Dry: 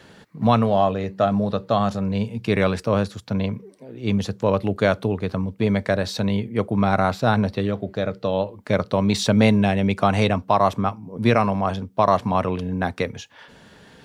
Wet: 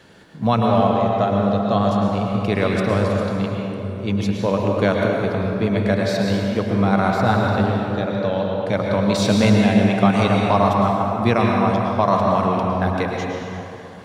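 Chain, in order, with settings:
dense smooth reverb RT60 3.1 s, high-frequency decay 0.55×, pre-delay 95 ms, DRR −1 dB
level −1 dB

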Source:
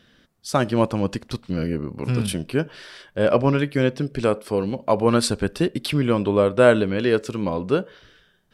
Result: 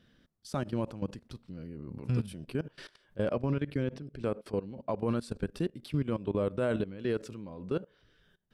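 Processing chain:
output level in coarse steps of 21 dB
low-shelf EQ 380 Hz +8 dB
brickwall limiter −15.5 dBFS, peak gain reduction 10 dB
0:03.50–0:04.95: high-shelf EQ 7,500 Hz −10 dB
level −6 dB

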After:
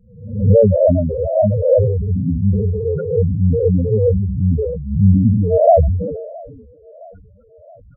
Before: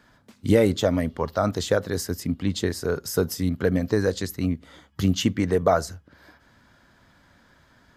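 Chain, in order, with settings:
peak hold with a rise ahead of every peak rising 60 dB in 0.69 s
Butterworth low-pass 3,300 Hz 96 dB per octave
comb filter 1.5 ms, depth 56%
feedback echo with a band-pass in the loop 667 ms, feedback 61%, band-pass 500 Hz, level −23 dB
spectral peaks only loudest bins 4
low-shelf EQ 130 Hz +4.5 dB
level that may fall only so fast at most 42 dB per second
level +7 dB

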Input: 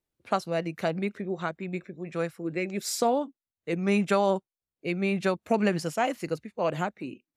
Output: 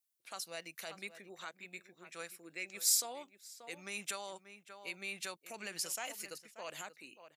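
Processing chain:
low-shelf EQ 120 Hz −10 dB
slap from a distant wall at 100 metres, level −14 dB
brickwall limiter −20 dBFS, peak gain reduction 8.5 dB
first-order pre-emphasis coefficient 0.97
level +4 dB

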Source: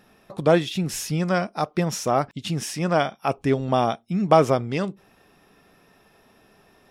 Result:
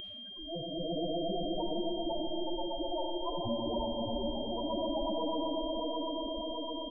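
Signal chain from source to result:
parametric band 72 Hz +6.5 dB 0.48 octaves
comb filter 2.3 ms, depth 54%
on a send: echo that builds up and dies away 123 ms, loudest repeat 5, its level −6.5 dB
on the sum: volume swells 482 ms
ring modulation 170 Hz
spectral peaks only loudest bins 2
steady tone 3,200 Hz −35 dBFS
head-to-tape spacing loss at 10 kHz 23 dB
comb and all-pass reverb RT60 2.5 s, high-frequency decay 0.35×, pre-delay 10 ms, DRR 7.5 dB
every bin compressed towards the loudest bin 2 to 1
level −4.5 dB

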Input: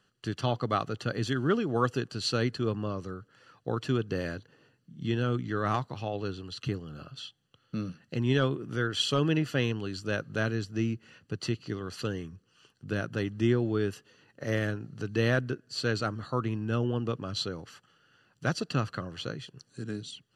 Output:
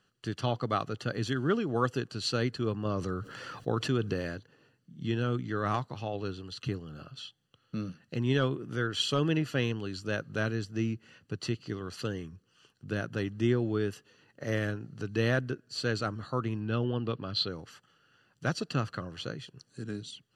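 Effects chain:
0:16.60–0:17.49: high shelf with overshoot 5,200 Hz −6.5 dB, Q 3
tape wow and flutter 22 cents
0:02.85–0:04.14: envelope flattener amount 50%
level −1.5 dB

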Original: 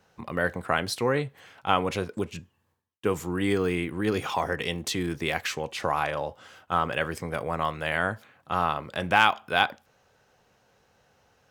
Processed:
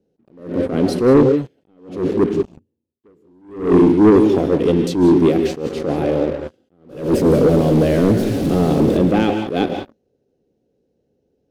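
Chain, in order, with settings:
0:06.89–0:08.97: converter with a step at zero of −26 dBFS
drawn EQ curve 100 Hz 0 dB, 190 Hz +6 dB, 290 Hz +14 dB, 460 Hz +8 dB, 1,100 Hz −23 dB, 4,300 Hz −9 dB, 7,500 Hz −8 dB, 14,000 Hz +6 dB
reverb whose tail is shaped and stops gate 210 ms rising, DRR 7 dB
leveller curve on the samples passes 3
high-frequency loss of the air 70 metres
level that may rise only so fast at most 120 dB per second

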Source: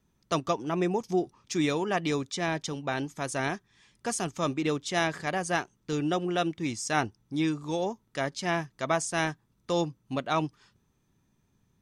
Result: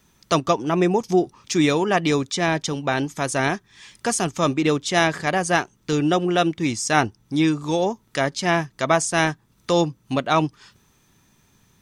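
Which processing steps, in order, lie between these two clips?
one half of a high-frequency compander encoder only
level +8.5 dB

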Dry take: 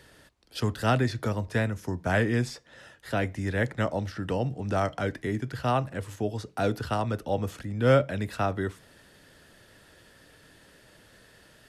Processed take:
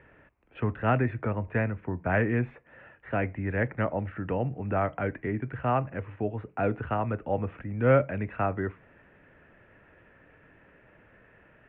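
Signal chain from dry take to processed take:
elliptic low-pass filter 2,500 Hz, stop band 50 dB

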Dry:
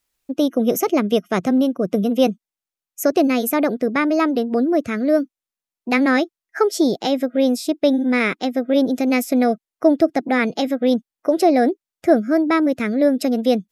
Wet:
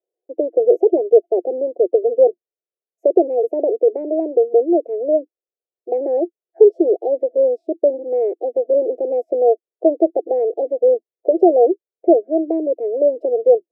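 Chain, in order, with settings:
elliptic band-pass filter 340–720 Hz, stop band 40 dB
parametric band 440 Hz +11.5 dB 0.76 octaves
level −1.5 dB

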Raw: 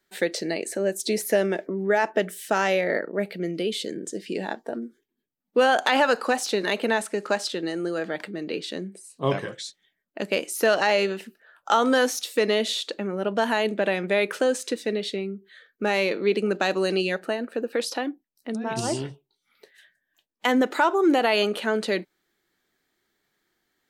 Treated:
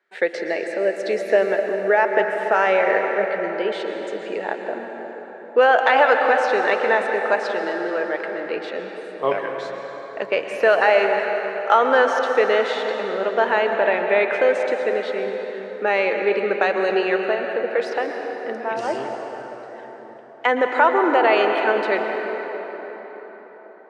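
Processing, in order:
band-pass filter 220–4,800 Hz
flat-topped bell 1,000 Hz +11 dB 3 octaves
dense smooth reverb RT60 4.9 s, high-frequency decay 0.55×, pre-delay 105 ms, DRR 3.5 dB
level −6 dB

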